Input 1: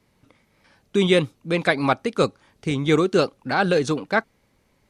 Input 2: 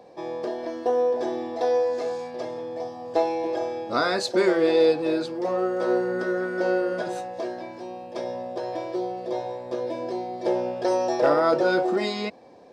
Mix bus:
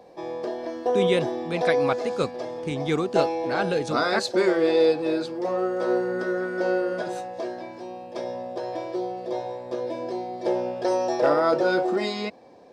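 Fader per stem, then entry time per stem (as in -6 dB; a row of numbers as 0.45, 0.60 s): -6.5, -0.5 dB; 0.00, 0.00 s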